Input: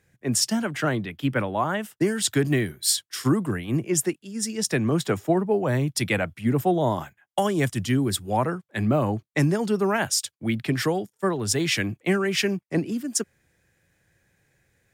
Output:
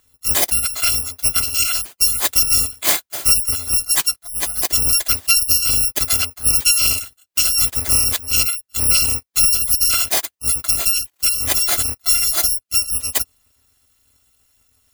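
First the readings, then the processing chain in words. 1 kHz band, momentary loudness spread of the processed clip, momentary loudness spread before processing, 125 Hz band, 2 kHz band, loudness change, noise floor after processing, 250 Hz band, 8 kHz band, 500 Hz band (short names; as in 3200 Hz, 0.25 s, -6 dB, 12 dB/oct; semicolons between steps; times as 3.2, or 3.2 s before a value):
-3.0 dB, 5 LU, 5 LU, -7.0 dB, +3.0 dB, +9.5 dB, -67 dBFS, -15.0 dB, +13.5 dB, -11.5 dB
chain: FFT order left unsorted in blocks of 256 samples; spectral gate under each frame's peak -30 dB strong; gain +6.5 dB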